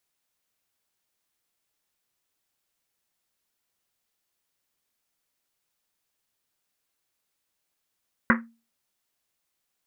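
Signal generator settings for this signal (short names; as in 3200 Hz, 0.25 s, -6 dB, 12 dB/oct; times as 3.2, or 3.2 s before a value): Risset drum, pitch 230 Hz, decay 0.33 s, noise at 1500 Hz, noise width 1000 Hz, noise 45%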